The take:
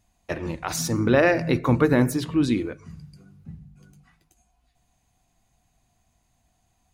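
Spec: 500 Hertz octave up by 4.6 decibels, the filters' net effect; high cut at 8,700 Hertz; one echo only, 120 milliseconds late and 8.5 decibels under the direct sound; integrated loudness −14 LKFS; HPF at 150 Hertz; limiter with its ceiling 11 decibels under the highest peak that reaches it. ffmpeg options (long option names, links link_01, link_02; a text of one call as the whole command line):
ffmpeg -i in.wav -af "highpass=150,lowpass=8700,equalizer=frequency=500:width_type=o:gain=5.5,alimiter=limit=-15dB:level=0:latency=1,aecho=1:1:120:0.376,volume=11.5dB" out.wav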